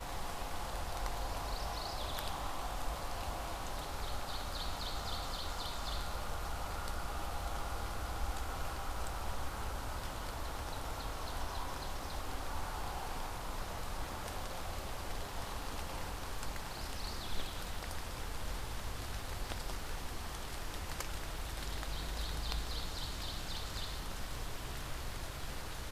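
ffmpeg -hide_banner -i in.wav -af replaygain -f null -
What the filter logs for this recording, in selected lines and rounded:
track_gain = +24.2 dB
track_peak = 0.119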